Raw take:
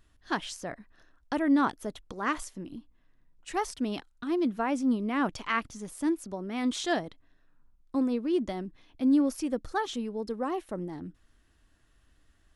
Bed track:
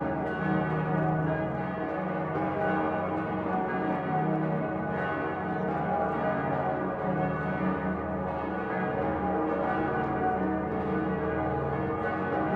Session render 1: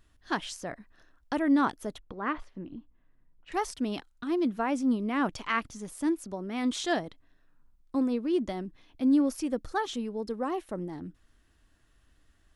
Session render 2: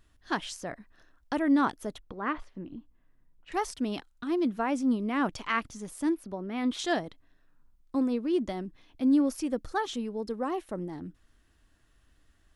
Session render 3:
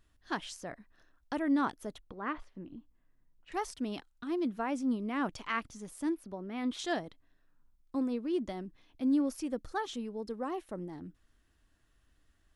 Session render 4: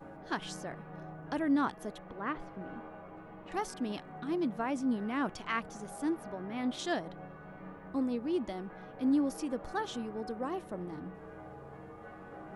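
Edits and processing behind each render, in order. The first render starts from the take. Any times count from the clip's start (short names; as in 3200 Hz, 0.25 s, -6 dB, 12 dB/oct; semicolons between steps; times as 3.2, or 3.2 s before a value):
1.98–3.52 air absorption 360 m
6.15–6.79 bell 7300 Hz -14 dB 0.93 oct
gain -5 dB
add bed track -19 dB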